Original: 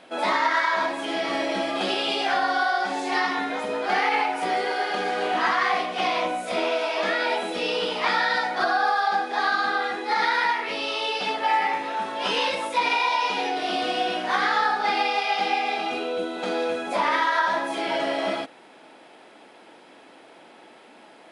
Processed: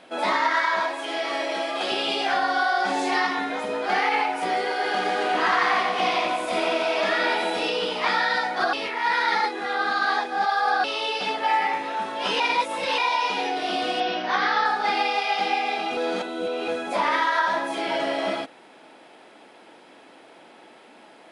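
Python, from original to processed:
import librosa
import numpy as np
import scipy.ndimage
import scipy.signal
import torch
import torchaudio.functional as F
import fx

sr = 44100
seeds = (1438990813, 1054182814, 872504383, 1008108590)

y = fx.highpass(x, sr, hz=400.0, slope=12, at=(0.8, 1.92))
y = fx.env_flatten(y, sr, amount_pct=50, at=(2.57, 3.27))
y = fx.echo_split(y, sr, split_hz=1200.0, low_ms=148, high_ms=88, feedback_pct=52, wet_db=-4, at=(4.83, 7.69), fade=0.02)
y = fx.steep_lowpass(y, sr, hz=6200.0, slope=96, at=(14.0, 14.66))
y = fx.edit(y, sr, fx.reverse_span(start_s=8.73, length_s=2.11),
    fx.reverse_span(start_s=12.4, length_s=0.58),
    fx.reverse_span(start_s=15.97, length_s=0.71), tone=tone)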